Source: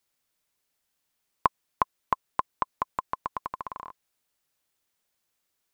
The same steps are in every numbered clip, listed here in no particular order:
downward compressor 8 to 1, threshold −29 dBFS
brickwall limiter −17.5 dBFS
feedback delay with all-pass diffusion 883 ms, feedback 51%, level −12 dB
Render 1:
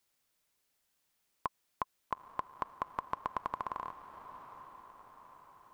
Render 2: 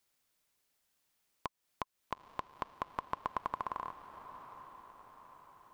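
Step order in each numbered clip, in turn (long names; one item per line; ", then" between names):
brickwall limiter, then downward compressor, then feedback delay with all-pass diffusion
downward compressor, then brickwall limiter, then feedback delay with all-pass diffusion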